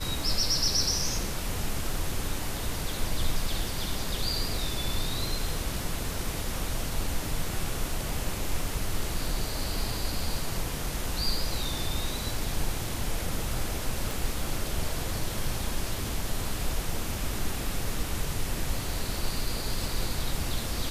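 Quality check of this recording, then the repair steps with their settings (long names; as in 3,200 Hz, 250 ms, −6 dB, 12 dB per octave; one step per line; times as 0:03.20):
0:14.11: click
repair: click removal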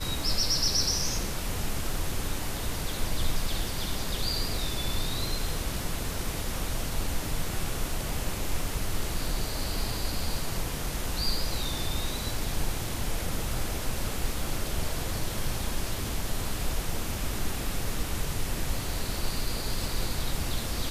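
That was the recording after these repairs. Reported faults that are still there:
0:14.11: click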